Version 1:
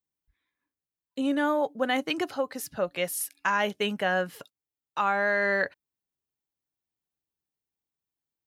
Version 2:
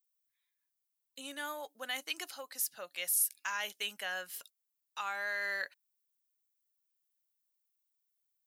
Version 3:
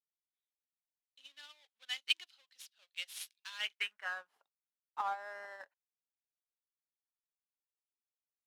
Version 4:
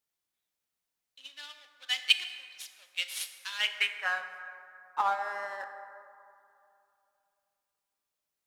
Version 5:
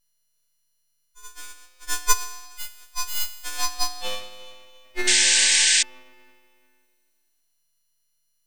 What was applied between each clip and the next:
differentiator; in parallel at 0 dB: peak limiter -29 dBFS, peak gain reduction 11 dB; on the sum: trim -2.5 dB
square wave that keeps the level; band-pass sweep 3.4 kHz -> 840 Hz, 3.49–4.37 s; upward expansion 2.5:1, over -50 dBFS; trim +8 dB
plate-style reverb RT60 2.7 s, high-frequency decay 0.4×, DRR 7 dB; trim +8.5 dB
partials quantised in pitch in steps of 6 st; full-wave rectifier; painted sound noise, 5.07–5.83 s, 1.5–9 kHz -18 dBFS

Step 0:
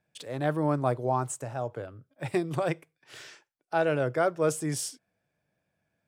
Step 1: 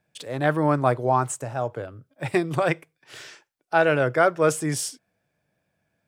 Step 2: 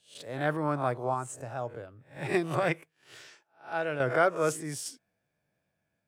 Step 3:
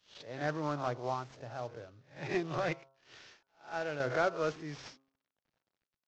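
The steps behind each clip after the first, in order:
dynamic bell 1.8 kHz, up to +6 dB, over -41 dBFS, Q 0.72; trim +4.5 dB
reverse spectral sustain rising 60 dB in 0.35 s; random-step tremolo 3.5 Hz; trim -6 dB
CVSD coder 32 kbps; de-hum 134.8 Hz, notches 11; trim -5 dB

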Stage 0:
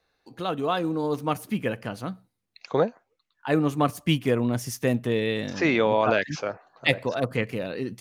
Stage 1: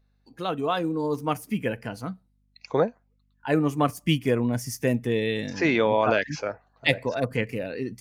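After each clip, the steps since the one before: hum 50 Hz, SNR 32 dB; spectral noise reduction 9 dB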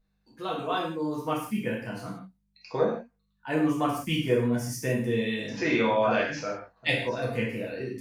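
gated-style reverb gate 200 ms falling, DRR -5 dB; trim -8 dB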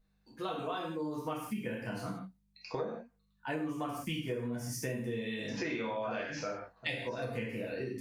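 compression 6:1, threshold -34 dBFS, peak gain reduction 14.5 dB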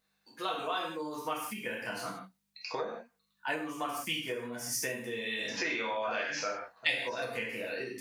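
high-pass 1.1 kHz 6 dB/octave; trim +8 dB

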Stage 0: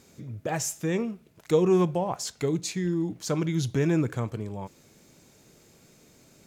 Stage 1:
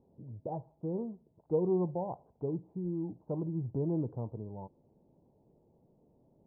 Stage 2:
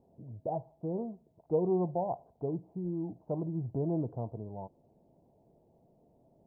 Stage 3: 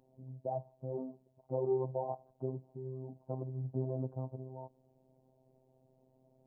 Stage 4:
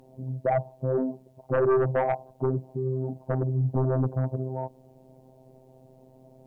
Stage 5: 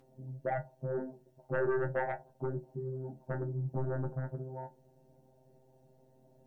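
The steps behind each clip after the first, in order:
Chebyshev low-pass 930 Hz, order 5; trim -7.5 dB
peaking EQ 680 Hz +10 dB 0.3 oct
robot voice 130 Hz; trim -1 dB
sine folder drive 7 dB, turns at -22 dBFS; trim +4 dB
inharmonic resonator 73 Hz, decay 0.24 s, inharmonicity 0.002

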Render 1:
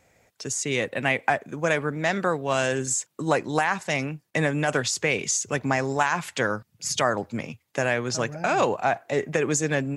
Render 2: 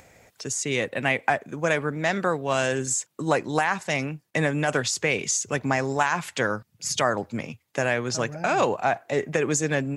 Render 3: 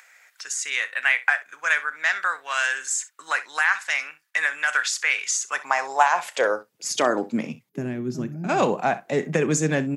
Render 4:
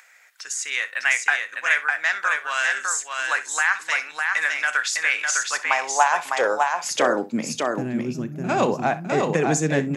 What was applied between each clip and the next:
upward compressor, threshold -45 dBFS
early reflections 32 ms -16.5 dB, 64 ms -17 dB; high-pass sweep 1.5 kHz -> 180 Hz, 5.25–7.66 s; time-frequency box 7.69–8.49 s, 420–11000 Hz -16 dB
delay 605 ms -3.5 dB

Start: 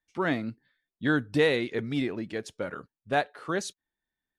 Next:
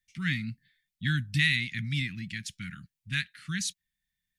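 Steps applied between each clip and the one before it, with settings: elliptic band-stop 180–2000 Hz, stop band 60 dB; trim +6 dB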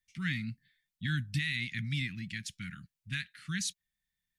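peak limiter -20.5 dBFS, peak gain reduction 8.5 dB; trim -2.5 dB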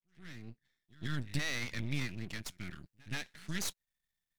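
fade-in on the opening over 1.38 s; pre-echo 127 ms -23 dB; half-wave rectifier; trim +2 dB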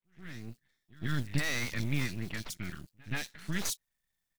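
block-companded coder 5-bit; bands offset in time lows, highs 40 ms, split 3.5 kHz; trim +4.5 dB

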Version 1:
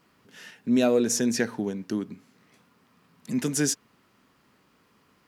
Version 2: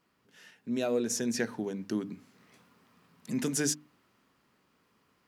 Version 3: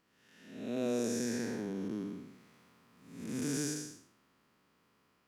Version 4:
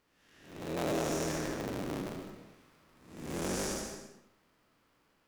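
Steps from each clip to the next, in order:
hum notches 50/100/150/200/250/300 Hz; gain riding 2 s; trim -5.5 dB
spectral blur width 323 ms
cycle switcher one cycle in 3, inverted; on a send at -6.5 dB: reverberation RT60 0.70 s, pre-delay 110 ms

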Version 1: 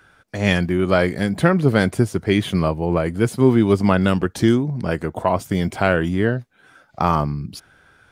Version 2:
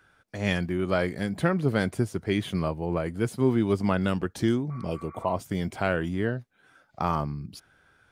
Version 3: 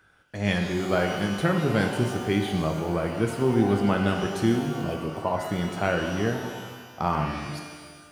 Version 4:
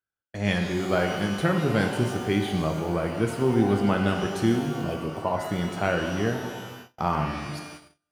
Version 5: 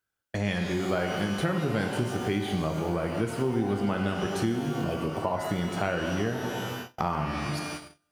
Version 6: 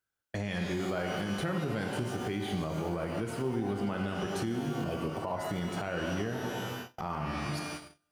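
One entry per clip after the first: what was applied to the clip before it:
spectral replace 4.73–5.33 s, 1.1–2.4 kHz after; trim -8.5 dB
pitch-shifted reverb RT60 1.5 s, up +12 st, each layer -8 dB, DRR 3 dB
gate -42 dBFS, range -34 dB
compression 3:1, threshold -35 dBFS, peak gain reduction 14 dB; trim +7 dB
peak limiter -19.5 dBFS, peak gain reduction 8 dB; trim -3.5 dB

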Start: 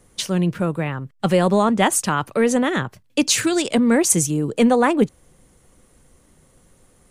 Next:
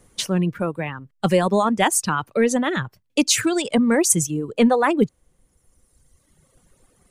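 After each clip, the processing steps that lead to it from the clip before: reverb removal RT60 1.8 s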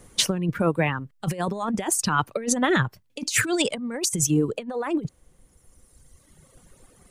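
compressor with a negative ratio -23 dBFS, ratio -0.5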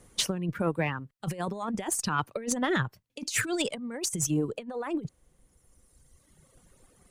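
Chebyshev shaper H 2 -16 dB, 5 -29 dB, 7 -43 dB, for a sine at -5.5 dBFS; trim -7 dB

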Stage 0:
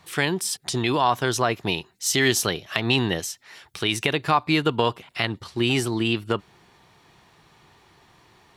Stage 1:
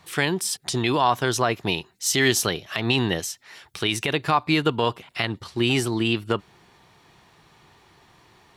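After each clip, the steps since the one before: loudness maximiser +7 dB; trim -6.5 dB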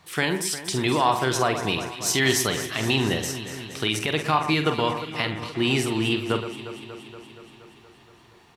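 doubling 46 ms -9 dB; echo whose repeats swap between lows and highs 118 ms, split 2.3 kHz, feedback 83%, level -10 dB; trim -1.5 dB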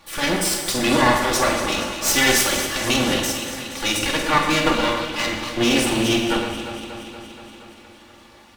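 comb filter that takes the minimum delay 3.5 ms; on a send at -3.5 dB: reverberation, pre-delay 3 ms; on the sum: trim +6 dB

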